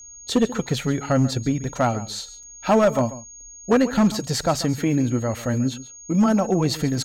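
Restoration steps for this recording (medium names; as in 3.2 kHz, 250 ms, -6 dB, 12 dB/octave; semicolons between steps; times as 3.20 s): clip repair -11.5 dBFS; band-stop 6.6 kHz, Q 30; interpolate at 2.43 s, 4.3 ms; inverse comb 138 ms -16 dB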